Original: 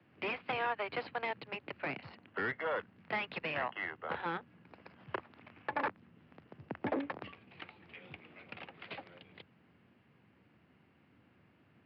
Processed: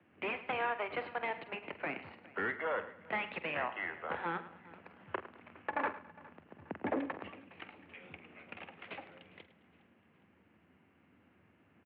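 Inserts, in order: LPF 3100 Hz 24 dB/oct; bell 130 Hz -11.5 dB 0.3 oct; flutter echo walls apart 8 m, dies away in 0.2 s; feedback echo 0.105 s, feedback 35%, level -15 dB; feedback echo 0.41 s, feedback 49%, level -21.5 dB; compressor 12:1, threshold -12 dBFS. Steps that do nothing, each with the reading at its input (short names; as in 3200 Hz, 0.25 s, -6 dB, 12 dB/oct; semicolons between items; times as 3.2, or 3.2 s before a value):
compressor, threshold -12 dBFS: input peak -21.0 dBFS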